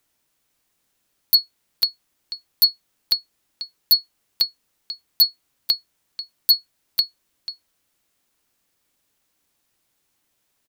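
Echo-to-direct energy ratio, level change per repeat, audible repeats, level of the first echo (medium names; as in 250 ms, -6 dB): -14.0 dB, no regular repeats, 1, -14.0 dB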